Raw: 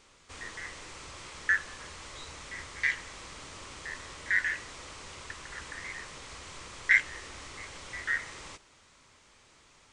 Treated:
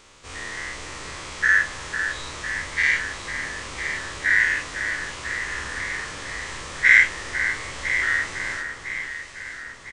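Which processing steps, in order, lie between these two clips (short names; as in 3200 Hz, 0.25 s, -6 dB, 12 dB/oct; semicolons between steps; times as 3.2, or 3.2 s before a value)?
spectral dilation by 0.12 s; doubler 45 ms -12.5 dB; echo with dull and thin repeats by turns 0.502 s, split 1800 Hz, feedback 70%, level -6 dB; gain +4 dB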